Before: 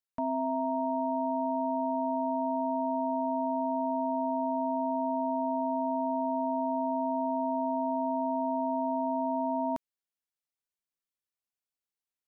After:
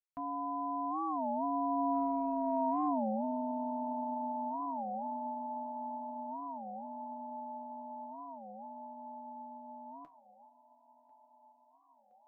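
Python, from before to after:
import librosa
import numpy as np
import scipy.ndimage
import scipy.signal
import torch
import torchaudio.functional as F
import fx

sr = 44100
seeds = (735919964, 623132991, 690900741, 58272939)

y = fx.doppler_pass(x, sr, speed_mps=26, closest_m=22.0, pass_at_s=2.7)
y = fx.lowpass(y, sr, hz=1000.0, slope=6)
y = fx.tilt_shelf(y, sr, db=-5.5, hz=790.0)
y = y + 0.42 * np.pad(y, (int(7.3 * sr / 1000.0), 0))[:len(y)]
y = fx.over_compress(y, sr, threshold_db=-33.0, ratio=-0.5)
y = fx.comb_fb(y, sr, f0_hz=67.0, decay_s=0.19, harmonics='all', damping=0.0, mix_pct=70)
y = fx.echo_thinned(y, sr, ms=1030, feedback_pct=78, hz=230.0, wet_db=-20.0)
y = fx.record_warp(y, sr, rpm=33.33, depth_cents=250.0)
y = y * 10.0 ** (6.5 / 20.0)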